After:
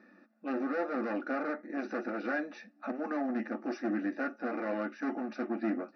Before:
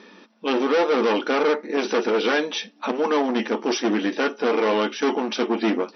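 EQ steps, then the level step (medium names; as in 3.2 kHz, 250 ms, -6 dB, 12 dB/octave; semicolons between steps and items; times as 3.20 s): distance through air 250 m; static phaser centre 650 Hz, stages 8; band-stop 2.2 kHz, Q 11; -8.0 dB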